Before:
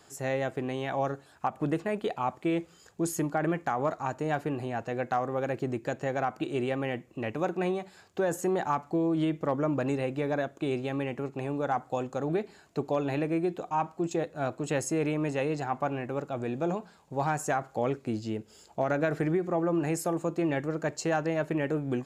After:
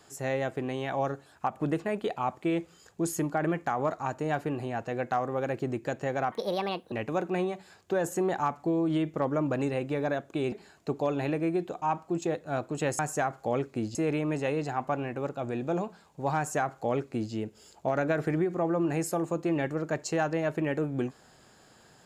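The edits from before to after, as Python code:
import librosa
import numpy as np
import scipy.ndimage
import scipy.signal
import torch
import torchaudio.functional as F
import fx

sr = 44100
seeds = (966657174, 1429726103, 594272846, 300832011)

y = fx.edit(x, sr, fx.speed_span(start_s=6.32, length_s=0.87, speed=1.45),
    fx.cut(start_s=10.79, length_s=1.62),
    fx.duplicate(start_s=17.3, length_s=0.96, to_s=14.88), tone=tone)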